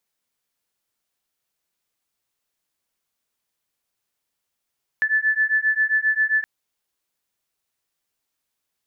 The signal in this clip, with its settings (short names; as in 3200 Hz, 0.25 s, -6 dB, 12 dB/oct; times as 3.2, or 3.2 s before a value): beating tones 1740 Hz, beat 7.5 Hz, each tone -20.5 dBFS 1.42 s